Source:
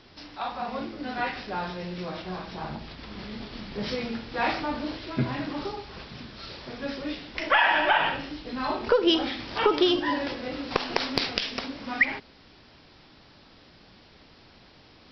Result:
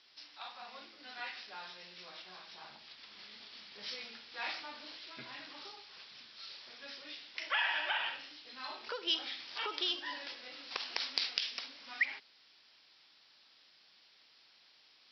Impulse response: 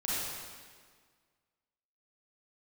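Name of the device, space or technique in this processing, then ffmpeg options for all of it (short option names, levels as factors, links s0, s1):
piezo pickup straight into a mixer: -af "lowpass=5200,aderivative,volume=1.12"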